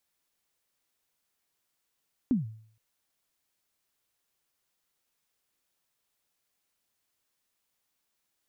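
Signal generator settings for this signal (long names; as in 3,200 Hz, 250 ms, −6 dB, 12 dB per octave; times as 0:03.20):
synth kick length 0.47 s, from 280 Hz, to 110 Hz, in 144 ms, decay 0.56 s, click off, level −19 dB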